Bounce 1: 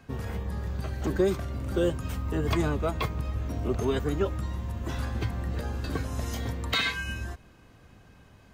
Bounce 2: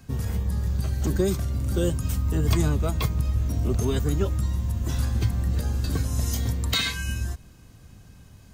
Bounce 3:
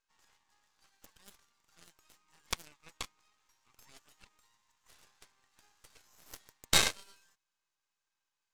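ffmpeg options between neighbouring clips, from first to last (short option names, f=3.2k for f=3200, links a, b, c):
-af "bass=f=250:g=10,treble=f=4k:g=14,volume=-2.5dB"
-af "afftfilt=real='re*between(b*sr/4096,780,7900)':imag='im*between(b*sr/4096,780,7900)':win_size=4096:overlap=0.75,aeval=exprs='0.282*(cos(1*acos(clip(val(0)/0.282,-1,1)))-cos(1*PI/2))+0.126*(cos(2*acos(clip(val(0)/0.282,-1,1)))-cos(2*PI/2))+0.0251*(cos(3*acos(clip(val(0)/0.282,-1,1)))-cos(3*PI/2))+0.0316*(cos(7*acos(clip(val(0)/0.282,-1,1)))-cos(7*PI/2))':c=same,aeval=exprs='max(val(0),0)':c=same,volume=3dB"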